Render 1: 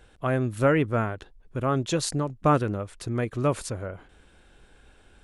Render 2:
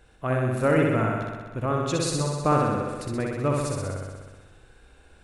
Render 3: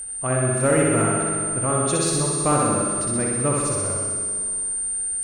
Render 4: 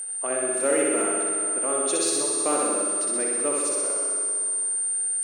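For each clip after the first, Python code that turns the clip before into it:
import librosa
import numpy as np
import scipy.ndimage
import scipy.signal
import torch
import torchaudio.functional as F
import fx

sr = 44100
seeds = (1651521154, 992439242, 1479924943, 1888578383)

y1 = fx.notch(x, sr, hz=3200.0, q=12.0)
y1 = fx.room_flutter(y1, sr, wall_m=10.8, rt60_s=1.4)
y1 = y1 * librosa.db_to_amplitude(-2.0)
y2 = y1 + 10.0 ** (-32.0 / 20.0) * np.sin(2.0 * np.pi * 8900.0 * np.arange(len(y1)) / sr)
y2 = fx.rev_schroeder(y2, sr, rt60_s=2.4, comb_ms=30, drr_db=4.5)
y2 = fx.cheby_harmonics(y2, sr, harmonics=(5,), levels_db=(-25,), full_scale_db=-7.0)
y3 = scipy.signal.sosfilt(scipy.signal.butter(4, 330.0, 'highpass', fs=sr, output='sos'), y2)
y3 = fx.dynamic_eq(y3, sr, hz=1100.0, q=0.83, threshold_db=-36.0, ratio=4.0, max_db=-7)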